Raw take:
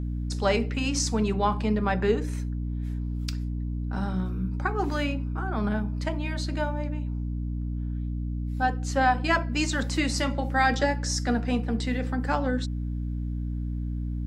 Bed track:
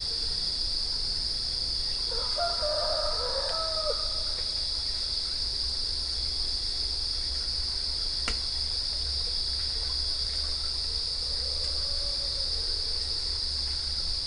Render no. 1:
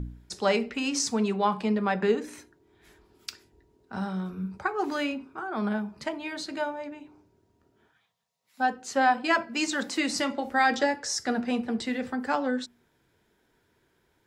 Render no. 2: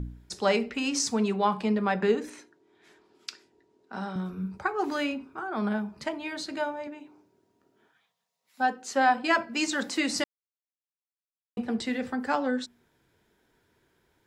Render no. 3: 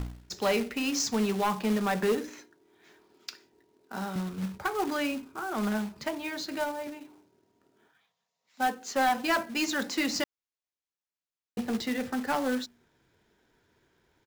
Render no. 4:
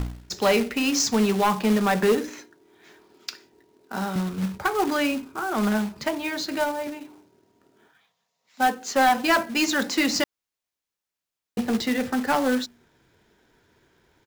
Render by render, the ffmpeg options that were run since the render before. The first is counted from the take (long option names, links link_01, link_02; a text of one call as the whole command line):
ffmpeg -i in.wav -af "bandreject=frequency=60:width_type=h:width=4,bandreject=frequency=120:width_type=h:width=4,bandreject=frequency=180:width_type=h:width=4,bandreject=frequency=240:width_type=h:width=4,bandreject=frequency=300:width_type=h:width=4" out.wav
ffmpeg -i in.wav -filter_complex "[0:a]asettb=1/sr,asplit=3[link_01][link_02][link_03];[link_01]atrim=end=2.304[link_04];[link_02]atrim=start=2.3:end=4.16,asetpts=PTS-STARTPTS,afade=type=in:duration=0.004:curve=qsin,afade=type=out:start_time=1.856:duration=0.004:curve=qsin,highpass=230,lowpass=7500[link_05];[link_03]atrim=start=4.156[link_06];[link_04][link_05]acrossfade=duration=0.004:curve1=hsin:curve2=qsin[link_07];[link_07][link_06]acrossfade=duration=0.004:curve1=qsin:curve2=hsin,asettb=1/sr,asplit=3[link_08][link_09][link_10];[link_08]atrim=end=6.874[link_11];[link_09]atrim=start=6.87:end=9.09,asetpts=PTS-STARTPTS,afade=type=in:duration=0.004:curve=qsin,afade=type=out:start_time=2.216:duration=0.004:curve=qsin,highpass=180[link_12];[link_10]atrim=start=9.086[link_13];[link_11][link_12]acrossfade=duration=0.004:curve1=hsin:curve2=qsin[link_14];[link_14][link_13]acrossfade=duration=0.004:curve1=qsin:curve2=hsin,asplit=3[link_15][link_16][link_17];[link_15]atrim=end=10.24,asetpts=PTS-STARTPTS,afade=type=out:start_time=10.236:duration=0.004:curve=hsin[link_18];[link_16]atrim=start=10.24:end=11.57,asetpts=PTS-STARTPTS,volume=0[link_19];[link_17]atrim=start=11.57,asetpts=PTS-STARTPTS,afade=type=in:duration=0.004:curve=hsin[link_20];[link_18][link_19][link_20]concat=n=3:v=0:a=1" out.wav
ffmpeg -i in.wav -af "aresample=16000,asoftclip=type=tanh:threshold=-20dB,aresample=44100,acrusher=bits=3:mode=log:mix=0:aa=0.000001" out.wav
ffmpeg -i in.wav -af "volume=6.5dB" out.wav